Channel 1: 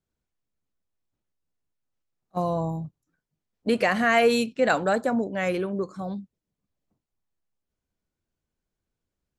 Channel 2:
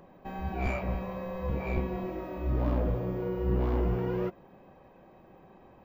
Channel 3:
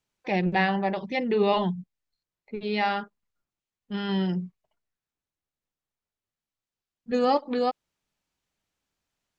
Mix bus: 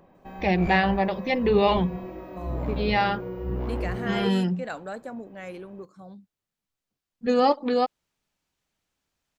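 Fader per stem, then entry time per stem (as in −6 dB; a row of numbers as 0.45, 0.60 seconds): −12.5, −2.0, +2.5 decibels; 0.00, 0.00, 0.15 seconds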